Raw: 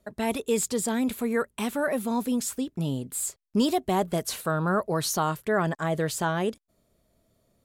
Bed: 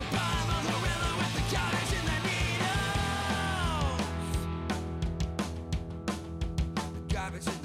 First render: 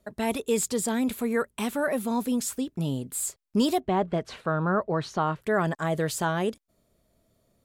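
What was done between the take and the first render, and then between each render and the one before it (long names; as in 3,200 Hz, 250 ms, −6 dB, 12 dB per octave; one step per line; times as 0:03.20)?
0:03.80–0:05.42: low-pass filter 2,700 Hz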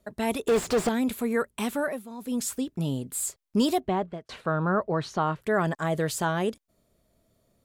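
0:00.47–0:00.89: mid-hump overdrive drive 38 dB, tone 1,000 Hz, clips at −14 dBFS
0:01.79–0:02.42: duck −13.5 dB, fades 0.24 s
0:03.87–0:04.29: fade out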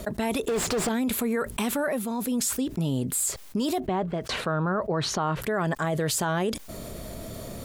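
brickwall limiter −20.5 dBFS, peak gain reduction 7 dB
envelope flattener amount 70%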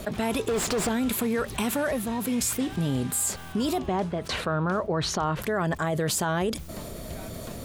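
mix in bed −11.5 dB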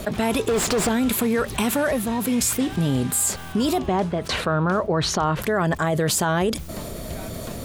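level +5 dB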